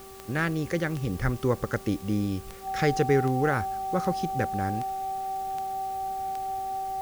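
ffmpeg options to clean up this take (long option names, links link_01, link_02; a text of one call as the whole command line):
ffmpeg -i in.wav -af "adeclick=threshold=4,bandreject=frequency=387.1:width_type=h:width=4,bandreject=frequency=774.2:width_type=h:width=4,bandreject=frequency=1161.3:width_type=h:width=4,bandreject=frequency=770:width=30,afwtdn=0.0028" out.wav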